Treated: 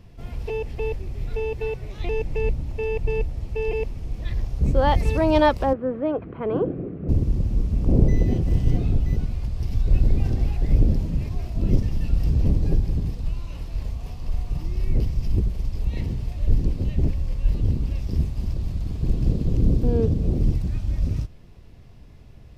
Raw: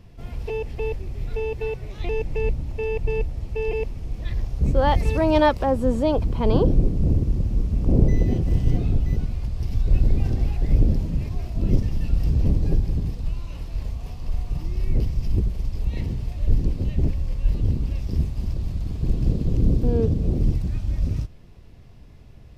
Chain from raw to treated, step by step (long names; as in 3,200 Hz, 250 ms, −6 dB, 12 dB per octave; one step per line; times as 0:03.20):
0:05.73–0:07.09: loudspeaker in its box 210–2,100 Hz, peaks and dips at 230 Hz −6 dB, 590 Hz −3 dB, 900 Hz −9 dB, 1,400 Hz +4 dB